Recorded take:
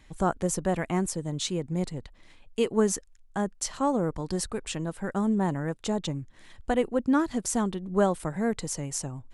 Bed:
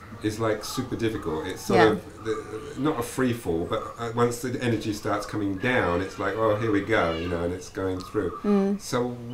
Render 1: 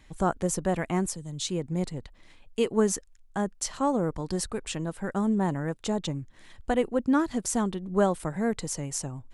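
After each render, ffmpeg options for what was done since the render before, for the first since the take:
-filter_complex "[0:a]asettb=1/sr,asplit=3[s0][s1][s2];[s0]atrim=end=1.084[s3];[s1]atrim=start=1.08:end=1.49,asetpts=PTS-STARTPTS,afade=t=in:d=0.004:c=qsin,afade=t=out:st=0.406:d=0.004:c=qsin,acrossover=split=150|3000[s4][s5][s6];[s5]acompressor=threshold=0.00282:ratio=2:attack=3.2:release=140:knee=2.83:detection=peak[s7];[s4][s7][s6]amix=inputs=3:normalize=0[s8];[s2]atrim=start=1.486[s9];[s3][s8]acrossfade=d=0.004:c1=hsin:c2=qsin[s10];[s10][s9]acrossfade=d=0.004:c1=qsin:c2=hsin"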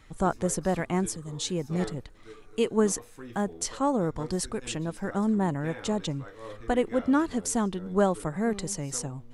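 -filter_complex "[1:a]volume=0.106[s0];[0:a][s0]amix=inputs=2:normalize=0"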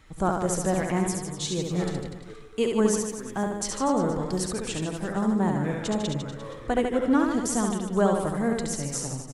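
-af "aecho=1:1:70|150.5|243.1|349.5|472:0.631|0.398|0.251|0.158|0.1"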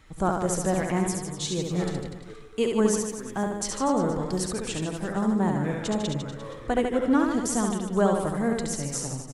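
-af anull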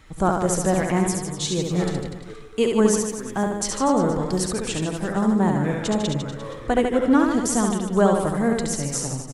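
-af "volume=1.68"

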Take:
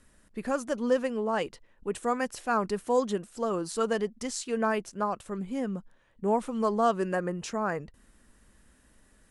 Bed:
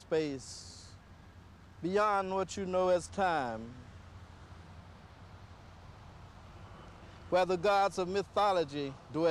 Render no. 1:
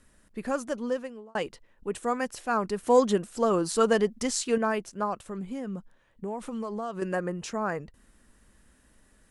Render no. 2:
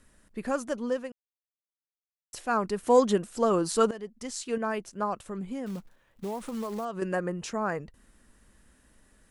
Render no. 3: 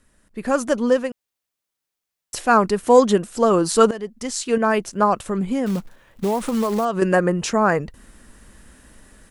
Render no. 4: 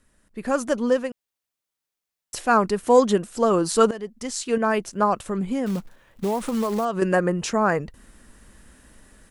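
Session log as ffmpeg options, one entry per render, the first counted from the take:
-filter_complex "[0:a]asettb=1/sr,asplit=3[s0][s1][s2];[s0]atrim=end=2.834[s3];[s1]atrim=start=2.83:end=4.58,asetpts=PTS-STARTPTS,afade=t=in:d=0.004:c=qsin,afade=t=out:st=1.746:d=0.004:c=qsin,acontrast=36[s4];[s2]atrim=start=4.576[s5];[s3][s4]acrossfade=d=0.004:c1=hsin:c2=qsin[s6];[s6][s5]acrossfade=d=0.004:c1=qsin:c2=hsin,asettb=1/sr,asplit=3[s7][s8][s9];[s7]atrim=end=5.254[s10];[s8]atrim=start=5.25:end=7.02,asetpts=PTS-STARTPTS,afade=t=in:d=0.004:c=qsin,afade=t=out:st=1.766:d=0.004:c=qsin,acompressor=threshold=0.0316:ratio=6:attack=3.2:release=140:knee=1:detection=peak[s11];[s9]atrim=start=7.016[s12];[s10][s11]acrossfade=d=0.004:c1=hsin:c2=qsin[s13];[s13][s12]acrossfade=d=0.004:c1=qsin:c2=hsin,asplit=2[s14][s15];[s14]atrim=end=1.35,asetpts=PTS-STARTPTS,afade=t=out:st=0.64:d=0.71[s16];[s15]atrim=start=1.35,asetpts=PTS-STARTPTS,afade=t=in:d=0.004:c=hsin[s17];[s16][s17]concat=n=2:v=0:a=1"
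-filter_complex "[0:a]asettb=1/sr,asplit=3[s0][s1][s2];[s0]atrim=end=5.664[s3];[s1]atrim=start=5.66:end=6.85,asetpts=PTS-STARTPTS,afade=t=in:d=0.004:c=qsin,afade=t=out:st=1.186:d=0.004:c=qsin,acrusher=bits=4:mode=log:mix=0:aa=0.000001[s4];[s2]atrim=start=6.846[s5];[s3][s4]acrossfade=d=0.004:c1=hsin:c2=qsin[s6];[s6][s5]acrossfade=d=0.004:c1=qsin:c2=hsin,asplit=4[s7][s8][s9][s10];[s7]atrim=end=1.12,asetpts=PTS-STARTPTS,afade=t=out:st=1.116:d=0.004:c=hsin[s11];[s8]atrim=start=1.12:end=2.33,asetpts=PTS-STARTPTS,volume=0[s12];[s9]atrim=start=2.33:end=3.91,asetpts=PTS-STARTPTS,afade=t=in:d=0.004:c=hsin,afade=t=out:st=1.576:d=0.004:c=hsin:silence=0.105925[s13];[s10]atrim=start=3.91,asetpts=PTS-STARTPTS,afade=t=in:d=1.22:silence=0.105925[s14];[s11][s12][s13][s14]concat=n=4:v=0:a=1"
-af "dynaudnorm=f=320:g=3:m=4.47"
-af "volume=0.708"

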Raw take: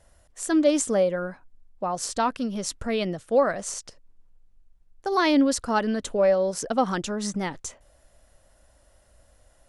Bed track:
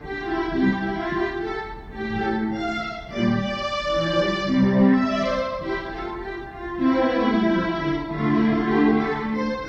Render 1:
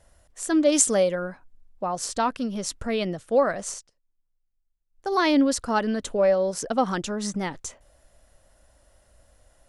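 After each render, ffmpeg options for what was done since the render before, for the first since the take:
-filter_complex "[0:a]asettb=1/sr,asplit=3[s0][s1][s2];[s0]atrim=end=0.724[s3];[s1]atrim=start=0.72:end=1.15,asetpts=PTS-STARTPTS,afade=t=in:d=0.004:c=qsin,afade=t=out:st=0.426:d=0.004:c=qsin,highshelf=f=2300:g=9.5[s4];[s2]atrim=start=1.146[s5];[s3][s4]acrossfade=d=0.004:c1=hsin:c2=qsin[s6];[s6][s5]acrossfade=d=0.004:c1=qsin:c2=hsin,asplit=3[s7][s8][s9];[s7]atrim=end=3.88,asetpts=PTS-STARTPTS,afade=t=out:st=3.7:d=0.18:silence=0.1[s10];[s8]atrim=start=3.88:end=4.91,asetpts=PTS-STARTPTS,volume=0.1[s11];[s9]atrim=start=4.91,asetpts=PTS-STARTPTS,afade=t=in:d=0.18:silence=0.1[s12];[s10][s11][s12]concat=n=3:v=0:a=1"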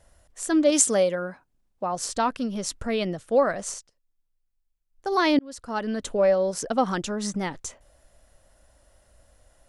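-filter_complex "[0:a]asettb=1/sr,asplit=3[s0][s1][s2];[s0]atrim=end=0.704[s3];[s1]atrim=start=0.7:end=1.92,asetpts=PTS-STARTPTS,afade=t=in:d=0.004:c=qsin,afade=t=out:st=1.216:d=0.004:c=qsin,highpass=f=120:p=1[s4];[s2]atrim=start=1.916[s5];[s3][s4]acrossfade=d=0.004:c1=hsin:c2=qsin[s6];[s6][s5]acrossfade=d=0.004:c1=qsin:c2=hsin,asplit=2[s7][s8];[s7]atrim=end=5.39,asetpts=PTS-STARTPTS,afade=t=out:st=5.386:d=0.004:c=hsin[s9];[s8]atrim=start=5.39,asetpts=PTS-STARTPTS,afade=t=in:d=0.7[s10];[s9][s10]concat=n=2:v=0:a=1"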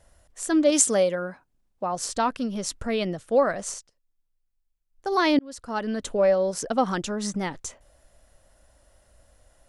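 -af anull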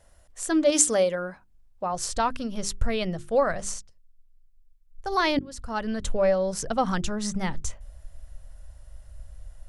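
-af "bandreject=f=50:t=h:w=6,bandreject=f=100:t=h:w=6,bandreject=f=150:t=h:w=6,bandreject=f=200:t=h:w=6,bandreject=f=250:t=h:w=6,bandreject=f=300:t=h:w=6,bandreject=f=350:t=h:w=6,bandreject=f=400:t=h:w=6,asubboost=boost=10:cutoff=94"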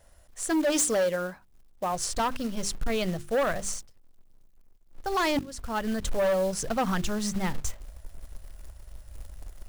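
-af "acrusher=bits=4:mode=log:mix=0:aa=0.000001,asoftclip=type=hard:threshold=0.0841"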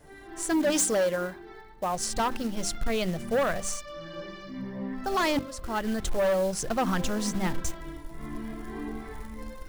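-filter_complex "[1:a]volume=0.119[s0];[0:a][s0]amix=inputs=2:normalize=0"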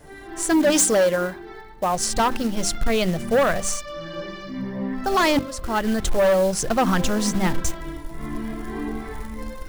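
-af "volume=2.24"

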